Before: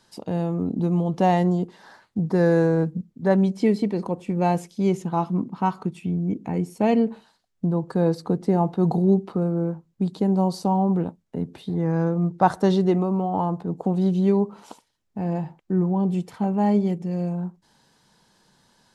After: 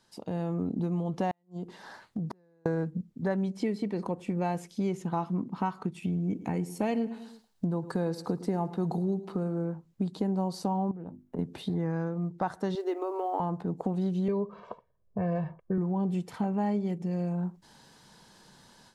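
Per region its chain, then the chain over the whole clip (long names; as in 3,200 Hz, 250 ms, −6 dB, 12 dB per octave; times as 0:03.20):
0:01.31–0:02.66: downward compressor, threshold −32 dBFS + gate with flip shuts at −27 dBFS, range −32 dB
0:06.02–0:09.65: high-shelf EQ 4,500 Hz +7 dB + repeating echo 108 ms, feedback 41%, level −18.5 dB
0:10.91–0:11.39: parametric band 4,700 Hz −12 dB 2.7 octaves + mains-hum notches 50/100/150/200/250/300/350 Hz + downward compressor 4 to 1, threshold −35 dBFS
0:12.75–0:13.40: linear-phase brick-wall high-pass 280 Hz + floating-point word with a short mantissa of 6 bits
0:14.28–0:15.78: low-pass that shuts in the quiet parts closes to 640 Hz, open at −18 dBFS + high-shelf EQ 4,300 Hz −11 dB + comb filter 1.8 ms, depth 90%
whole clip: automatic gain control gain up to 11.5 dB; dynamic equaliser 1,700 Hz, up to +4 dB, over −36 dBFS, Q 1.4; downward compressor 3 to 1, threshold −23 dBFS; level −7 dB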